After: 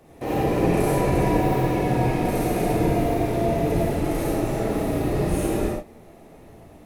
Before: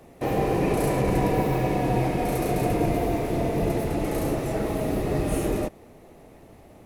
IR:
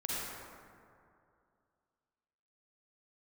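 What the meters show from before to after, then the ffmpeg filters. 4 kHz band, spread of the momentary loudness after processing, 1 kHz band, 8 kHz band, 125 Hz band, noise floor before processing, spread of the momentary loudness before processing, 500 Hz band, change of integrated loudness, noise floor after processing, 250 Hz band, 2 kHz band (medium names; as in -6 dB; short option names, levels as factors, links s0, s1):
+1.5 dB, 4 LU, +2.0 dB, +2.0 dB, +2.5 dB, -50 dBFS, 4 LU, +2.0 dB, +2.5 dB, -47 dBFS, +3.0 dB, +2.0 dB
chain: -filter_complex "[1:a]atrim=start_sample=2205,atrim=end_sample=6615[s0];[0:a][s0]afir=irnorm=-1:irlink=0"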